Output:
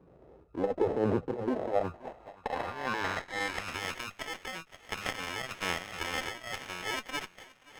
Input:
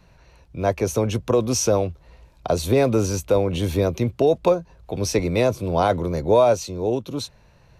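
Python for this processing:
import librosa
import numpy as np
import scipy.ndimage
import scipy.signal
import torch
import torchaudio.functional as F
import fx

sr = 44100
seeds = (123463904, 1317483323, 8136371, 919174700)

p1 = fx.over_compress(x, sr, threshold_db=-24.0, ratio=-1.0)
p2 = fx.phaser_stages(p1, sr, stages=12, low_hz=110.0, high_hz=1900.0, hz=1.1, feedback_pct=25)
p3 = p2 + fx.echo_wet_highpass(p2, sr, ms=1161, feedback_pct=44, hz=4300.0, wet_db=-7.0, dry=0)
p4 = fx.sample_hold(p3, sr, seeds[0], rate_hz=1300.0, jitter_pct=0)
p5 = p4 + 10.0 ** (-21.0 / 20.0) * np.pad(p4, (int(528 * sr / 1000.0), 0))[:len(p4)]
p6 = fx.filter_sweep_bandpass(p5, sr, from_hz=450.0, to_hz=2700.0, start_s=1.42, end_s=3.79, q=1.6)
p7 = fx.running_max(p6, sr, window=5)
y = p7 * librosa.db_to_amplitude(4.0)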